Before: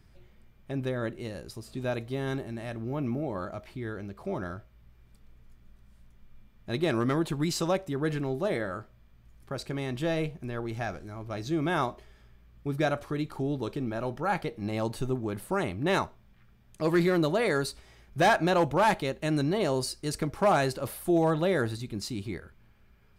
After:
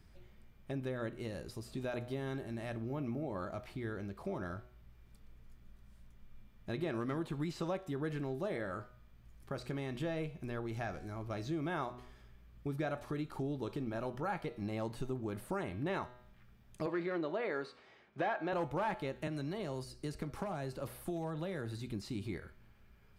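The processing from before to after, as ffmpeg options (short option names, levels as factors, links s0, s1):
-filter_complex "[0:a]asettb=1/sr,asplit=3[s0][s1][s2];[s0]atrim=end=16.864[s3];[s1]atrim=start=16.86:end=18.53,asetpts=PTS-STARTPTS,afade=t=in:d=0.004:c=qsin,afade=t=out:st=1.666:d=0.004:c=qsin,highpass=270,lowpass=3100[s4];[s2]atrim=start=18.526[s5];[s3][s4]acrossfade=d=0.004:c1=hsin:c2=qsin[s6];[s6][s5]acrossfade=d=0.004:c1=qsin:c2=hsin,asettb=1/sr,asplit=3[s7][s8][s9];[s7]atrim=end=19.274[s10];[s8]atrim=start=19.27:end=21.9,asetpts=PTS-STARTPTS,afade=t=in:d=0.004:c=qsin,afade=t=out:st=2.626:d=0.004:c=qsin,acrossover=split=180|790[s11][s12][s13];[s11]acompressor=threshold=0.0126:ratio=4[s14];[s12]acompressor=threshold=0.0158:ratio=4[s15];[s13]acompressor=threshold=0.00794:ratio=4[s16];[s14][s15][s16]amix=inputs=3:normalize=0[s17];[s9]atrim=start=21.896[s18];[s10][s17]acrossfade=d=0.004:c1=hsin:c2=qsin[s19];[s19][s18]acrossfade=d=0.004:c1=qsin:c2=hsin,acrossover=split=3100[s20][s21];[s21]acompressor=threshold=0.00398:ratio=4:attack=1:release=60[s22];[s20][s22]amix=inputs=2:normalize=0,bandreject=f=123.4:t=h:w=4,bandreject=f=246.8:t=h:w=4,bandreject=f=370.2:t=h:w=4,bandreject=f=493.6:t=h:w=4,bandreject=f=617:t=h:w=4,bandreject=f=740.4:t=h:w=4,bandreject=f=863.8:t=h:w=4,bandreject=f=987.2:t=h:w=4,bandreject=f=1110.6:t=h:w=4,bandreject=f=1234:t=h:w=4,bandreject=f=1357.4:t=h:w=4,bandreject=f=1480.8:t=h:w=4,bandreject=f=1604.2:t=h:w=4,bandreject=f=1727.6:t=h:w=4,bandreject=f=1851:t=h:w=4,bandreject=f=1974.4:t=h:w=4,bandreject=f=2097.8:t=h:w=4,bandreject=f=2221.2:t=h:w=4,bandreject=f=2344.6:t=h:w=4,bandreject=f=2468:t=h:w=4,bandreject=f=2591.4:t=h:w=4,bandreject=f=2714.8:t=h:w=4,bandreject=f=2838.2:t=h:w=4,bandreject=f=2961.6:t=h:w=4,bandreject=f=3085:t=h:w=4,bandreject=f=3208.4:t=h:w=4,bandreject=f=3331.8:t=h:w=4,bandreject=f=3455.2:t=h:w=4,bandreject=f=3578.6:t=h:w=4,bandreject=f=3702:t=h:w=4,bandreject=f=3825.4:t=h:w=4,bandreject=f=3948.8:t=h:w=4,bandreject=f=4072.2:t=h:w=4,bandreject=f=4195.6:t=h:w=4,bandreject=f=4319:t=h:w=4,bandreject=f=4442.4:t=h:w=4,bandreject=f=4565.8:t=h:w=4,bandreject=f=4689.2:t=h:w=4,bandreject=f=4812.6:t=h:w=4,acompressor=threshold=0.0178:ratio=2.5,volume=0.794"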